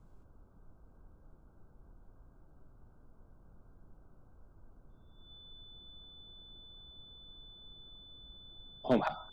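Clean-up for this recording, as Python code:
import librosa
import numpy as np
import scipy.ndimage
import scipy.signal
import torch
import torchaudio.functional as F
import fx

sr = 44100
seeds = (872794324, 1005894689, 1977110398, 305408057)

y = fx.fix_declip(x, sr, threshold_db=-19.0)
y = fx.notch(y, sr, hz=3500.0, q=30.0)
y = fx.noise_reduce(y, sr, print_start_s=1.29, print_end_s=1.79, reduce_db=30.0)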